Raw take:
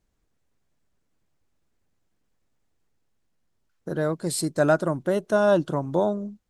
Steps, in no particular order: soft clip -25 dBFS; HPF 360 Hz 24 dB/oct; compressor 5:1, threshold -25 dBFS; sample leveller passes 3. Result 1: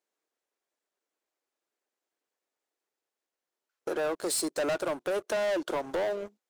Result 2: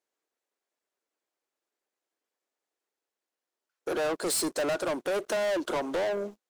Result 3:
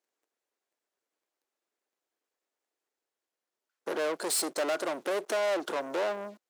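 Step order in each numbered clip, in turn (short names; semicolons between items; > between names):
HPF > sample leveller > compressor > soft clip; HPF > compressor > soft clip > sample leveller; compressor > soft clip > sample leveller > HPF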